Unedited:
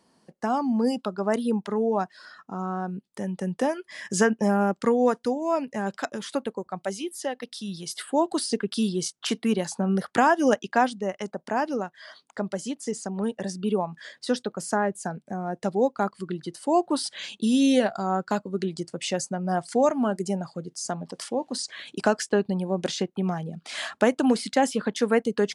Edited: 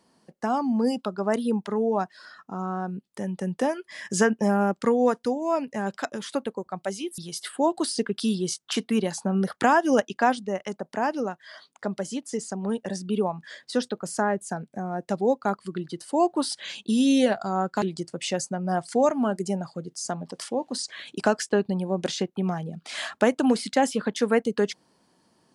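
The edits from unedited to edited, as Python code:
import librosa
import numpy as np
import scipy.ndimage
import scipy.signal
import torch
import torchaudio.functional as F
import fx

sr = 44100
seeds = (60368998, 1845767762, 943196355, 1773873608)

y = fx.edit(x, sr, fx.cut(start_s=7.18, length_s=0.54),
    fx.cut(start_s=18.36, length_s=0.26), tone=tone)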